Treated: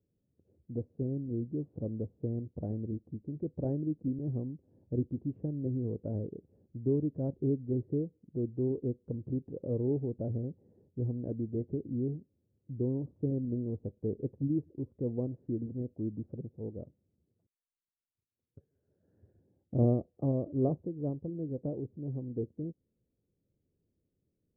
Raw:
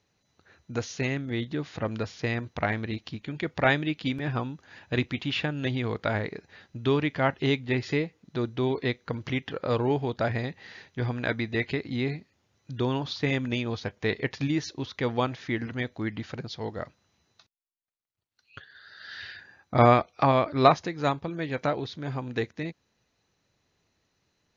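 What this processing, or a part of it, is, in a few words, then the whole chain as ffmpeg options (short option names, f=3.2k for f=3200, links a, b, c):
under water: -af "lowpass=f=410:w=0.5412,lowpass=f=410:w=1.3066,equalizer=f=540:t=o:w=0.35:g=5,bandreject=f=1.3k:w=13,volume=-3.5dB"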